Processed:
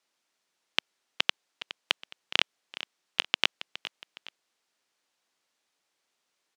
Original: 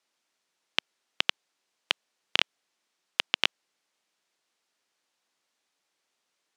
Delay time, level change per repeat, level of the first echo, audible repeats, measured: 0.415 s, -7.5 dB, -14.5 dB, 2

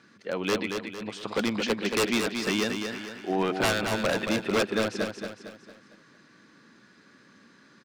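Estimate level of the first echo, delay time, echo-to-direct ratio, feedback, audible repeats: -6.0 dB, 0.227 s, -5.0 dB, 44%, 5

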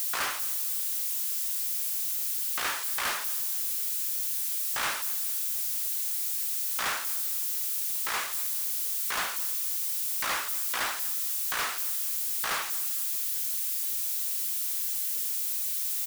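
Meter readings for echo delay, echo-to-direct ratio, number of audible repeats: 0.232 s, -18.5 dB, 2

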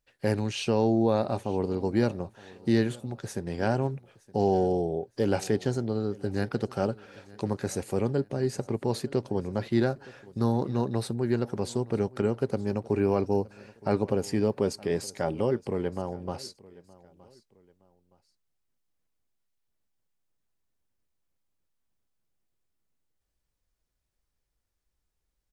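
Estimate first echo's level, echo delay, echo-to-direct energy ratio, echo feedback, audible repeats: -22.0 dB, 0.918 s, -21.5 dB, 34%, 2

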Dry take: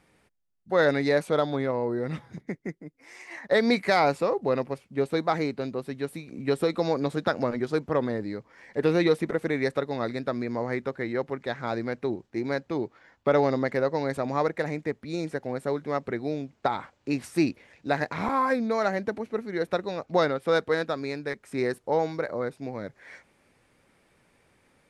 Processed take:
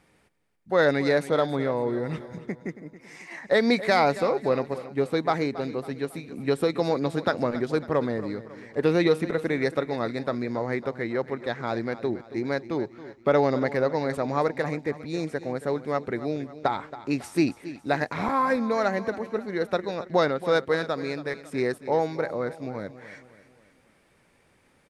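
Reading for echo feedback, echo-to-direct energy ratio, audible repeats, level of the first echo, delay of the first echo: 47%, -14.0 dB, 4, -15.0 dB, 0.275 s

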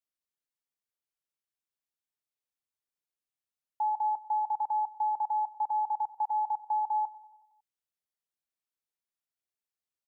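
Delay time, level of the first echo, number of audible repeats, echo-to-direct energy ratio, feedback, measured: 92 ms, -17.0 dB, 4, -15.0 dB, 59%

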